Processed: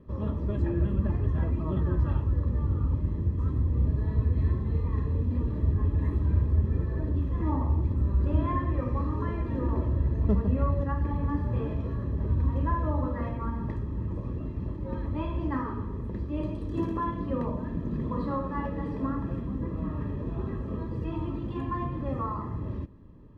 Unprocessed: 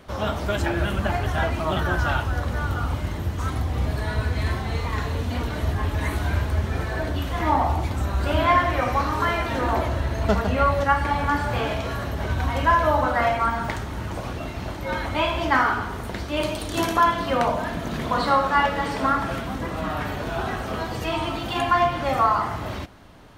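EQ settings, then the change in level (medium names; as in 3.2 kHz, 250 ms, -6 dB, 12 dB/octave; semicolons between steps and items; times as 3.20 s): boxcar filter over 60 samples; 0.0 dB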